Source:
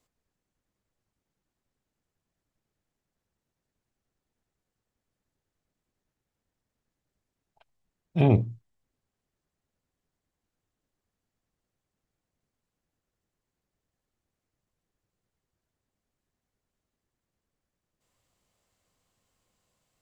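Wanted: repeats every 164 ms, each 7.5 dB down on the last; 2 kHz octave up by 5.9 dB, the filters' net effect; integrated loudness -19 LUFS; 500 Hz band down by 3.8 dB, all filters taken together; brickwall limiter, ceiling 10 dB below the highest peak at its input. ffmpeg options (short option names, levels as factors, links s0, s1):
-af "equalizer=f=500:t=o:g=-5.5,equalizer=f=2000:t=o:g=8,alimiter=limit=0.106:level=0:latency=1,aecho=1:1:164|328|492|656|820:0.422|0.177|0.0744|0.0312|0.0131,volume=5.01"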